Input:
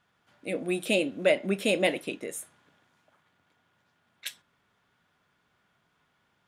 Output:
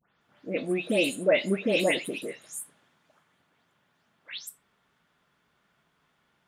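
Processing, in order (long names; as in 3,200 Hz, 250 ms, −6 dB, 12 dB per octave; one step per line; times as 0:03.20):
every frequency bin delayed by itself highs late, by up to 211 ms
level +1.5 dB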